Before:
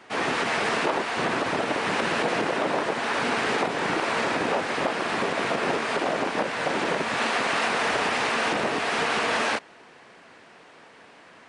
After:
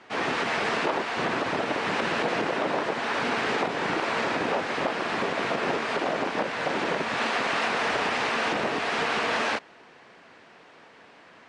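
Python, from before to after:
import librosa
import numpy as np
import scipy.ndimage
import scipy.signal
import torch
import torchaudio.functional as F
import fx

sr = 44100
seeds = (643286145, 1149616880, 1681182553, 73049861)

y = scipy.signal.sosfilt(scipy.signal.butter(2, 6500.0, 'lowpass', fs=sr, output='sos'), x)
y = y * 10.0 ** (-1.5 / 20.0)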